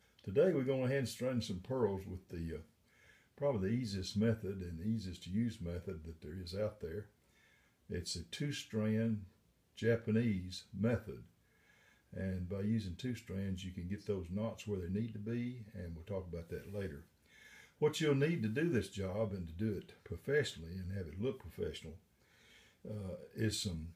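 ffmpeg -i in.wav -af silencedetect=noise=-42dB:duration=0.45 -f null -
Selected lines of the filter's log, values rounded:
silence_start: 2.58
silence_end: 3.41 | silence_duration: 0.83
silence_start: 7.01
silence_end: 7.90 | silence_duration: 0.89
silence_start: 9.23
silence_end: 9.79 | silence_duration: 0.56
silence_start: 11.15
silence_end: 12.13 | silence_duration: 0.98
silence_start: 16.97
silence_end: 17.82 | silence_duration: 0.84
silence_start: 21.89
silence_end: 22.85 | silence_duration: 0.96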